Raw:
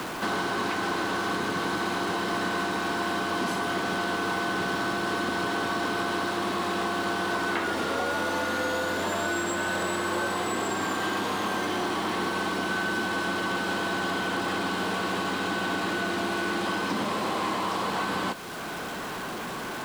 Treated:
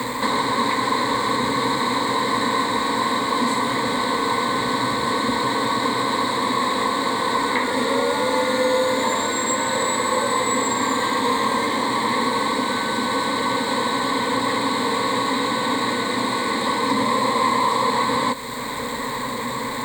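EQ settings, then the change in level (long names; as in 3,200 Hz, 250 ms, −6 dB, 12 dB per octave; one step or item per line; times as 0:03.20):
EQ curve with evenly spaced ripples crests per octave 1, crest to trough 17 dB
+4.5 dB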